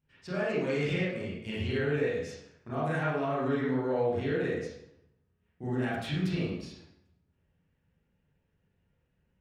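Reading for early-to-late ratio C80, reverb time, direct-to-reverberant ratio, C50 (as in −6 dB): 3.0 dB, 0.70 s, −9.5 dB, −1.0 dB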